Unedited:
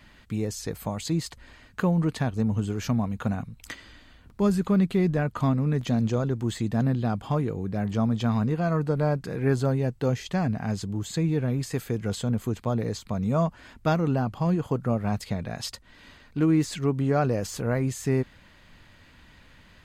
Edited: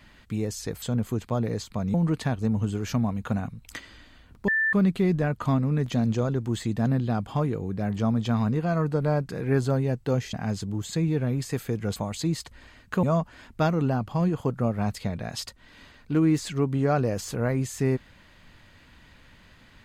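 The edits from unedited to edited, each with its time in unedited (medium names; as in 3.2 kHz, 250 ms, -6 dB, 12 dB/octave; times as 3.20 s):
0.82–1.89 s: swap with 12.17–13.29 s
4.43–4.68 s: bleep 1.77 kHz -20.5 dBFS
10.28–10.54 s: delete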